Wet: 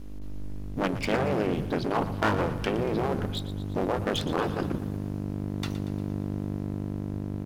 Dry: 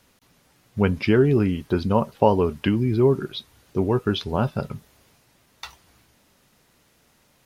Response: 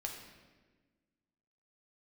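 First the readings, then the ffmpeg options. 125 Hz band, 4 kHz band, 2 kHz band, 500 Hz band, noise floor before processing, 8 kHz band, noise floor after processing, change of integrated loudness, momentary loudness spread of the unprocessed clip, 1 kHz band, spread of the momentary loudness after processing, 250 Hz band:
-5.5 dB, -2.0 dB, -0.5 dB, -7.0 dB, -62 dBFS, n/a, -35 dBFS, -7.5 dB, 18 LU, -3.0 dB, 7 LU, -5.5 dB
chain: -filter_complex "[0:a]aeval=exprs='val(0)+0.0178*(sin(2*PI*50*n/s)+sin(2*PI*2*50*n/s)/2+sin(2*PI*3*50*n/s)/3+sin(2*PI*4*50*n/s)/4+sin(2*PI*5*50*n/s)/5)':c=same,asubboost=boost=9.5:cutoff=160,dynaudnorm=f=270:g=11:m=11.5dB,aeval=exprs='abs(val(0))':c=same,afftfilt=real='re*lt(hypot(re,im),0.631)':imag='im*lt(hypot(re,im),0.631)':win_size=1024:overlap=0.75,asplit=2[a][b];[b]aecho=0:1:117|234|351|468|585|702:0.211|0.12|0.0687|0.0391|0.0223|0.0127[c];[a][c]amix=inputs=2:normalize=0,volume=-2.5dB"

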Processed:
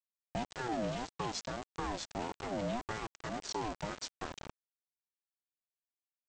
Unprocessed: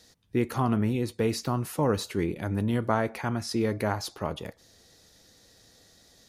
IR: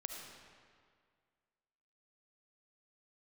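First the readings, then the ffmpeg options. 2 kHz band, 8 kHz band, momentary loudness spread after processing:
-7.5 dB, -5.5 dB, 7 LU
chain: -filter_complex "[0:a]aecho=1:1:3.9:0.78,adynamicequalizer=threshold=0.00562:dfrequency=2300:dqfactor=1.2:tfrequency=2300:tqfactor=1.2:attack=5:release=100:ratio=0.375:range=2.5:mode=cutabove:tftype=bell,acrossover=split=150|3000[a][b][c];[b]acompressor=threshold=-36dB:ratio=3[d];[a][d][c]amix=inputs=3:normalize=0,aresample=16000,aeval=exprs='val(0)*gte(abs(val(0)),0.0211)':c=same,aresample=44100,aeval=exprs='val(0)*sin(2*PI*520*n/s+520*0.25/1.7*sin(2*PI*1.7*n/s))':c=same,volume=-2dB"

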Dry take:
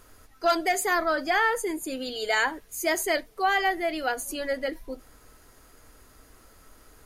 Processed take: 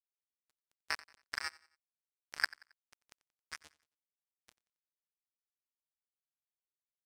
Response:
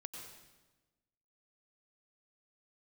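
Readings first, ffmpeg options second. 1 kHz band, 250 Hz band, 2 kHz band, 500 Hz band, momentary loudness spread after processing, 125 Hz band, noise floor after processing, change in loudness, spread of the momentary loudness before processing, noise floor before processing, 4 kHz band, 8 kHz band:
-25.0 dB, under -35 dB, -15.0 dB, -37.0 dB, 14 LU, n/a, under -85 dBFS, -14.0 dB, 9 LU, -55 dBFS, -13.0 dB, -20.5 dB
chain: -filter_complex "[0:a]aecho=1:1:6.7:0.55,acompressor=threshold=-25dB:ratio=8,alimiter=limit=-23dB:level=0:latency=1:release=74,aeval=exprs='val(0)*sin(2*PI*76*n/s)':c=same,bandpass=f=1.7k:t=q:w=6.1:csg=0,acrusher=bits=4:mix=0:aa=0.5,asplit=2[a][b];[b]aecho=0:1:90|180|270:0.0841|0.0328|0.0128[c];[a][c]amix=inputs=2:normalize=0,volume=14.5dB"

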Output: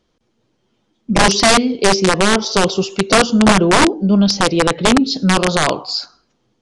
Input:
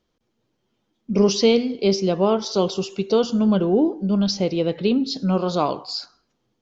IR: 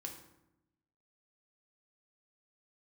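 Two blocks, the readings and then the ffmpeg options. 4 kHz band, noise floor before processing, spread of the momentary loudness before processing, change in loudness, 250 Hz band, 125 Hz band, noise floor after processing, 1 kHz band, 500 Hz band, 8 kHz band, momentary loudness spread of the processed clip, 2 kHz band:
+11.0 dB, -73 dBFS, 6 LU, +7.0 dB, +5.5 dB, +6.5 dB, -66 dBFS, +12.5 dB, +3.5 dB, n/a, 6 LU, +20.5 dB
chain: -af "aeval=exprs='(mod(4.22*val(0)+1,2)-1)/4.22':c=same,aresample=22050,aresample=44100,volume=7.5dB"

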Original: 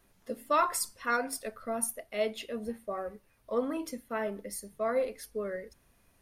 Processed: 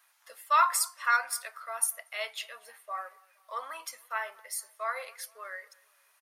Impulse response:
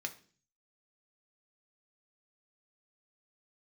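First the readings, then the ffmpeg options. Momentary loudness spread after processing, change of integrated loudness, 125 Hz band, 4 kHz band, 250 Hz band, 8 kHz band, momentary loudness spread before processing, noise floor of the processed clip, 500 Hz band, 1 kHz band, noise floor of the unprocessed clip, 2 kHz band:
17 LU, +2.5 dB, n/a, +4.0 dB, under -35 dB, +4.5 dB, 11 LU, -67 dBFS, -11.5 dB, +4.0 dB, -67 dBFS, +5.5 dB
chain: -filter_complex "[0:a]highpass=f=950:w=0.5412,highpass=f=950:w=1.3066,asplit=2[a][b];[b]adelay=234,lowpass=f=2.1k:p=1,volume=-24dB,asplit=2[c][d];[d]adelay=234,lowpass=f=2.1k:p=1,volume=0.49,asplit=2[e][f];[f]adelay=234,lowpass=f=2.1k:p=1,volume=0.49[g];[a][c][e][g]amix=inputs=4:normalize=0,asplit=2[h][i];[1:a]atrim=start_sample=2205,lowpass=2.1k[j];[i][j]afir=irnorm=-1:irlink=0,volume=-12.5dB[k];[h][k]amix=inputs=2:normalize=0,volume=4.5dB"

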